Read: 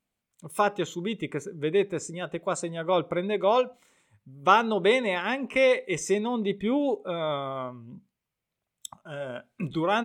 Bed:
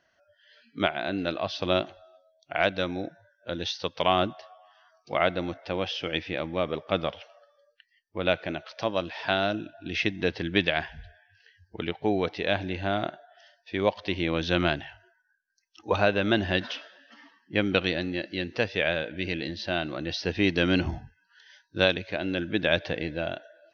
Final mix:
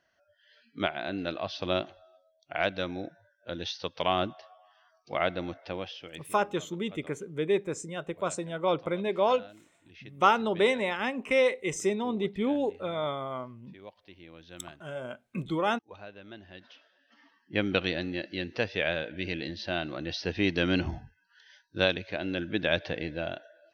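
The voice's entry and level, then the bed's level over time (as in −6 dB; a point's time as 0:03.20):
5.75 s, −2.5 dB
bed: 0:05.67 −4 dB
0:06.48 −23 dB
0:16.53 −23 dB
0:17.47 −3 dB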